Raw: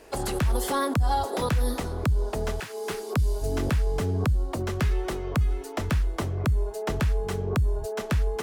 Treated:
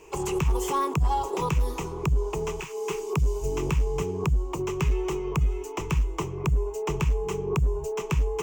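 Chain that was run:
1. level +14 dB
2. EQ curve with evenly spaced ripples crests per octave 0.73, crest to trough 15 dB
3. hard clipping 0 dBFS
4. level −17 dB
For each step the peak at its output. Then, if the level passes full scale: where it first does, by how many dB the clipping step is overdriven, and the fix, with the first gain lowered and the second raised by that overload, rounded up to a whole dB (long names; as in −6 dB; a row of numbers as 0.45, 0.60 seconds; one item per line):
−1.5, +4.0, 0.0, −17.0 dBFS
step 2, 4.0 dB
step 1 +10 dB, step 4 −13 dB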